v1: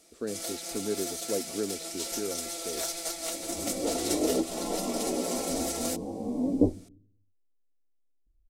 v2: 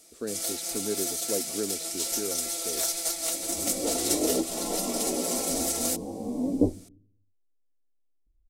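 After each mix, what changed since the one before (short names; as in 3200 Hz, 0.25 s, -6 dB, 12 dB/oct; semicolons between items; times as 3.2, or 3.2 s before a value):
master: add high shelf 5600 Hz +9 dB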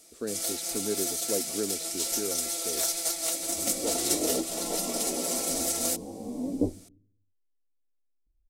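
second sound -4.0 dB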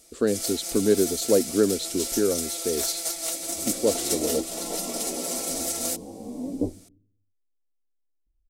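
speech +11.5 dB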